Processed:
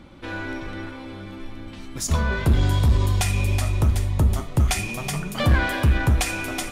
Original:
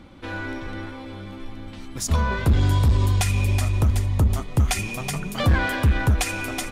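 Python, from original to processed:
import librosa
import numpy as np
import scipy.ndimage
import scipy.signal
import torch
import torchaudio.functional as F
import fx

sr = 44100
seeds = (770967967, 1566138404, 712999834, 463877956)

y = fx.rev_gated(x, sr, seeds[0], gate_ms=150, shape='falling', drr_db=8.5)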